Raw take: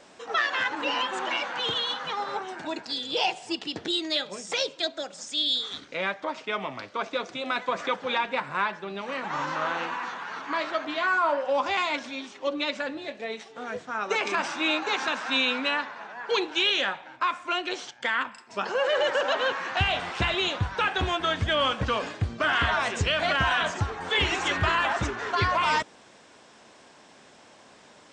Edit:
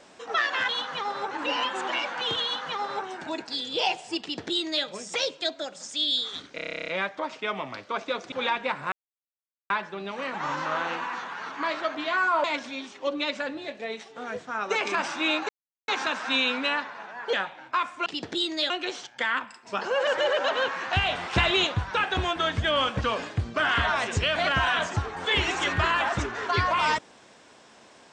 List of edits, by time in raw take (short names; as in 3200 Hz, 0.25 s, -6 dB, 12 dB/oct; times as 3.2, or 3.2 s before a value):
1.81–2.43 copy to 0.69
3.59–4.23 copy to 17.54
5.93 stutter 0.03 s, 12 plays
7.37–8 cut
8.6 insert silence 0.78 s
11.34–11.84 cut
14.89 insert silence 0.39 s
16.34–16.81 cut
18.91–19.21 reverse
20.17–20.51 gain +3.5 dB